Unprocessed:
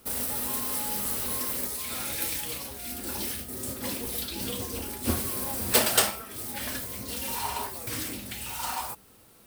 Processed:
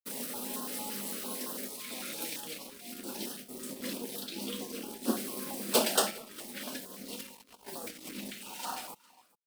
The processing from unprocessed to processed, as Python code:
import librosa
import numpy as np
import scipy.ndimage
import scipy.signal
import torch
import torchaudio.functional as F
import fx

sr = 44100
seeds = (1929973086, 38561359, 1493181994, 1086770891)

y = scipy.signal.sosfilt(scipy.signal.butter(12, 160.0, 'highpass', fs=sr, output='sos'), x)
y = fx.high_shelf(y, sr, hz=7500.0, db=-9.5)
y = fx.over_compress(y, sr, threshold_db=-40.0, ratio=-0.5, at=(7.15, 8.34))
y = np.sign(y) * np.maximum(np.abs(y) - 10.0 ** (-47.5 / 20.0), 0.0)
y = y + 10.0 ** (-23.0 / 20.0) * np.pad(y, (int(407 * sr / 1000.0), 0))[:len(y)]
y = fx.filter_held_notch(y, sr, hz=8.9, low_hz=750.0, high_hz=2200.0)